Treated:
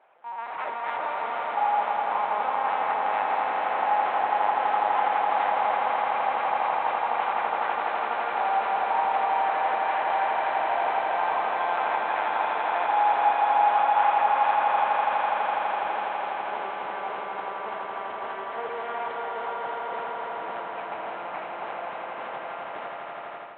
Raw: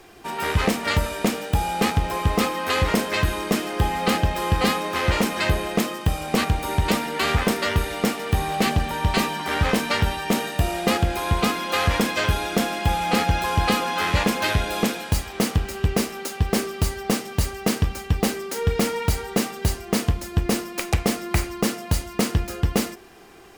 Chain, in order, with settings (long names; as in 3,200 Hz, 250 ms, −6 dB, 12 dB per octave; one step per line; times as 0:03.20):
brickwall limiter −19 dBFS, peak gain reduction 10 dB
linear-prediction vocoder at 8 kHz pitch kept
four-pole ladder band-pass 970 Hz, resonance 40%
echo that builds up and dies away 83 ms, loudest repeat 8, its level −7.5 dB
automatic gain control gain up to 8 dB
level +3 dB